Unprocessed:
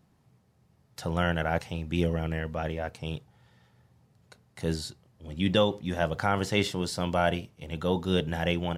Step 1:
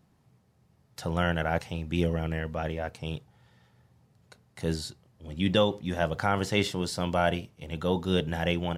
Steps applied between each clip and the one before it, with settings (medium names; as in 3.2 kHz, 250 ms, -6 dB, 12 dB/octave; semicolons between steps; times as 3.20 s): no audible change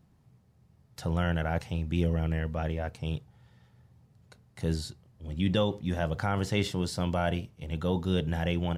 bass shelf 160 Hz +9.5 dB; in parallel at -0.5 dB: peak limiter -16.5 dBFS, peak gain reduction 7.5 dB; on the sum: trim -8.5 dB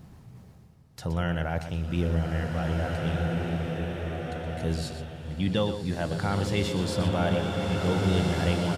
reverse; upward compressor, threshold -35 dBFS; reverse; delay 121 ms -10.5 dB; swelling reverb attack 1850 ms, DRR -0.5 dB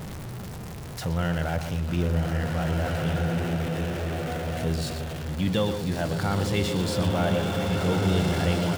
jump at every zero crossing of -32 dBFS